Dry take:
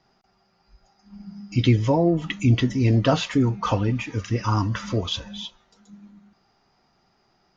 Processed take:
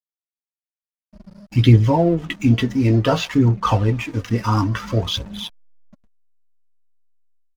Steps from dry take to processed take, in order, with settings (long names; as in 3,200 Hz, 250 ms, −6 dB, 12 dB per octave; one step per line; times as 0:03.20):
double-tracking delay 18 ms −9 dB
slack as between gear wheels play −34.5 dBFS
automatic gain control gain up to 12 dB
phase shifter 0.57 Hz, delay 4.7 ms, feedback 37%
level −4 dB